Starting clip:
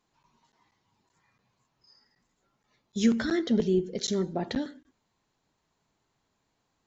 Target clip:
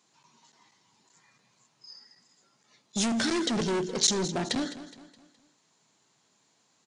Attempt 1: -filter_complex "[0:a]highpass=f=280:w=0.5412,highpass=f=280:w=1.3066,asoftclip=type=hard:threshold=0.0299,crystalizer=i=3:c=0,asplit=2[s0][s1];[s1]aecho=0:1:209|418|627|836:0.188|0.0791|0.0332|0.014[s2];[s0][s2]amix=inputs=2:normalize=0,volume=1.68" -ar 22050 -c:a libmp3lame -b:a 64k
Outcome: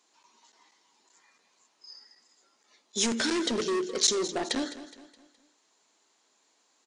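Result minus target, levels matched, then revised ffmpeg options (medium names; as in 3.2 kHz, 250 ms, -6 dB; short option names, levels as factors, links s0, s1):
125 Hz band -11.0 dB
-filter_complex "[0:a]highpass=f=130:w=0.5412,highpass=f=130:w=1.3066,asoftclip=type=hard:threshold=0.0299,crystalizer=i=3:c=0,asplit=2[s0][s1];[s1]aecho=0:1:209|418|627|836:0.188|0.0791|0.0332|0.014[s2];[s0][s2]amix=inputs=2:normalize=0,volume=1.68" -ar 22050 -c:a libmp3lame -b:a 64k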